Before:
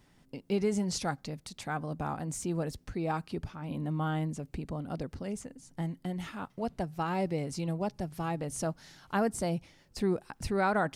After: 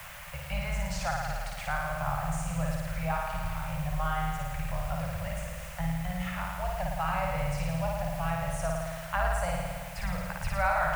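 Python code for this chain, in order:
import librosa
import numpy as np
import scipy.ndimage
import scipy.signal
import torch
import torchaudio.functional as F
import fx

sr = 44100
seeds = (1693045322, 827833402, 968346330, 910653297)

p1 = fx.octave_divider(x, sr, octaves=2, level_db=-3.0)
p2 = fx.peak_eq(p1, sr, hz=270.0, db=-15.0, octaves=1.0)
p3 = fx.room_flutter(p2, sr, wall_m=9.5, rt60_s=1.4)
p4 = fx.quant_dither(p3, sr, seeds[0], bits=6, dither='triangular')
p5 = p3 + (p4 * 10.0 ** (-8.5 / 20.0))
p6 = scipy.signal.sosfilt(scipy.signal.ellip(3, 1.0, 40, [170.0, 570.0], 'bandstop', fs=sr, output='sos'), p5)
p7 = fx.high_shelf_res(p6, sr, hz=3100.0, db=-7.0, q=1.5)
y = fx.band_squash(p7, sr, depth_pct=40)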